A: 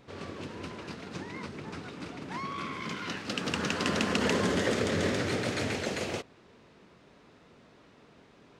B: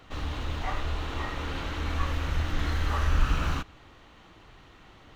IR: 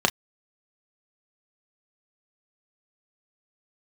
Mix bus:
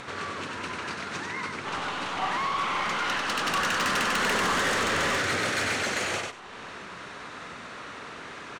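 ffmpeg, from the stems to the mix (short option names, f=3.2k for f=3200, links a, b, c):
-filter_complex "[0:a]aemphasis=mode=production:type=75kf,bandreject=f=5k:w=19,acompressor=mode=upward:threshold=-34dB:ratio=2.5,volume=-3dB,asplit=2[a][b];[b]volume=-4.5dB[c];[1:a]highpass=420,aeval=exprs='max(val(0),0)':c=same,adelay=1550,volume=-1.5dB,asplit=2[d][e];[e]volume=-12.5dB[f];[2:a]atrim=start_sample=2205[g];[f][g]afir=irnorm=-1:irlink=0[h];[c]aecho=0:1:95|190|285:1|0.17|0.0289[i];[a][d][h][i]amix=inputs=4:normalize=0,lowpass=f=10k:w=0.5412,lowpass=f=10k:w=1.3066,equalizer=f=1.4k:w=0.71:g=13.5,asoftclip=type=tanh:threshold=-21.5dB"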